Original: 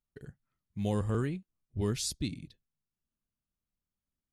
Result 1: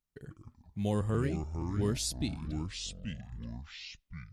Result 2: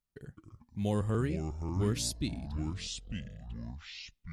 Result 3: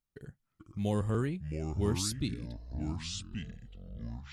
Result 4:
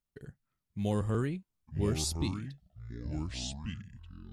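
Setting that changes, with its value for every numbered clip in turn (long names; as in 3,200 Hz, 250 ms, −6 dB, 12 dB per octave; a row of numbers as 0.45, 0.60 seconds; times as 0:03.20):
delay with pitch and tempo change per echo, delay time: 87, 157, 383, 694 milliseconds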